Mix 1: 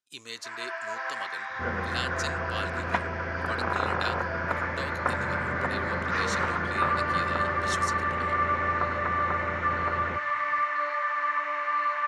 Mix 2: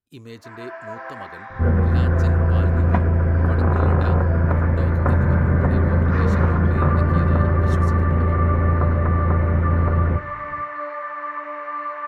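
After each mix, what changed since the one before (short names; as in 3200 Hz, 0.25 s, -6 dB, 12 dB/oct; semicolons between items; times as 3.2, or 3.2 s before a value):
second sound: send +11.5 dB; master: remove weighting filter ITU-R 468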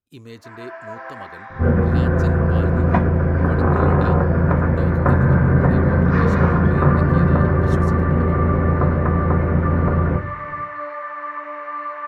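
second sound: send +9.5 dB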